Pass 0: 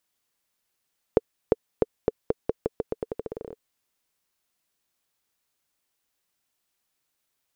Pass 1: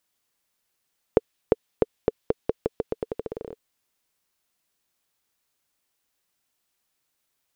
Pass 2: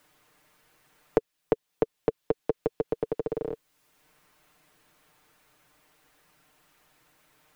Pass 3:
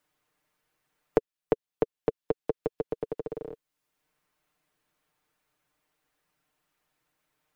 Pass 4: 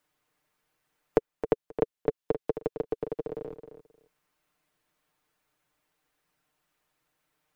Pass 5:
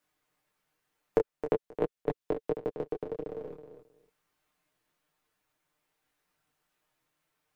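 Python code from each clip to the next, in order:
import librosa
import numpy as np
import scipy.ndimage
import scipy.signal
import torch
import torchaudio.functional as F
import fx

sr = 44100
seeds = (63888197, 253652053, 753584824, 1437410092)

y1 = fx.dynamic_eq(x, sr, hz=3200.0, q=0.99, threshold_db=-57.0, ratio=4.0, max_db=4)
y1 = y1 * 10.0 ** (1.5 / 20.0)
y2 = y1 + 0.65 * np.pad(y1, (int(6.6 * sr / 1000.0), 0))[:len(y1)]
y2 = fx.band_squash(y2, sr, depth_pct=70)
y2 = y2 * 10.0 ** (-3.0 / 20.0)
y3 = fx.upward_expand(y2, sr, threshold_db=-47.0, expansion=1.5)
y4 = fx.echo_feedback(y3, sr, ms=266, feedback_pct=17, wet_db=-10.0)
y5 = fx.detune_double(y4, sr, cents=16)
y5 = y5 * 10.0 ** (2.0 / 20.0)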